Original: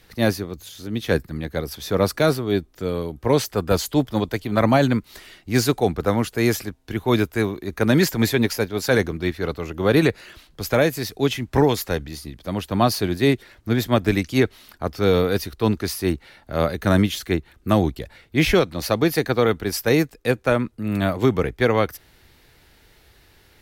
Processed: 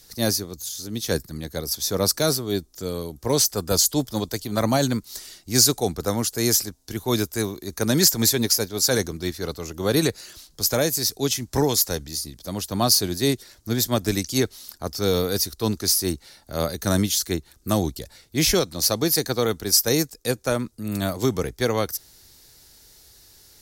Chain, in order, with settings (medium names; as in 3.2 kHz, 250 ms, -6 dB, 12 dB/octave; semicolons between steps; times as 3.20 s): resonant high shelf 3.8 kHz +13.5 dB, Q 1.5; trim -4 dB